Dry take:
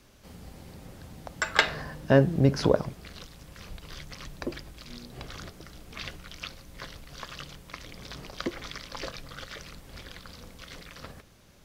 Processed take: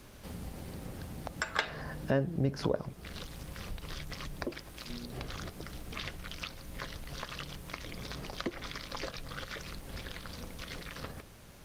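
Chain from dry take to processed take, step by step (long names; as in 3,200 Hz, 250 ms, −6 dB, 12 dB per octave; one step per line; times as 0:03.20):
0:04.45–0:04.89: low-shelf EQ 200 Hz −8 dB
downward compressor 2 to 1, threshold −45 dBFS, peak gain reduction 17 dB
level +6 dB
Opus 32 kbit/s 48,000 Hz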